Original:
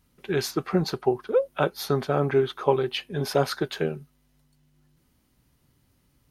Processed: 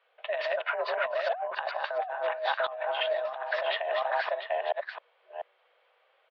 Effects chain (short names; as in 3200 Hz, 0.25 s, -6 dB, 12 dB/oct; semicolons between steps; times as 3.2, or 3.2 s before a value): reverse delay 0.429 s, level -2 dB; on a send: echo 0.694 s -8.5 dB; on the sum: mistuned SSB +230 Hz 340–3100 Hz; negative-ratio compressor -31 dBFS, ratio -1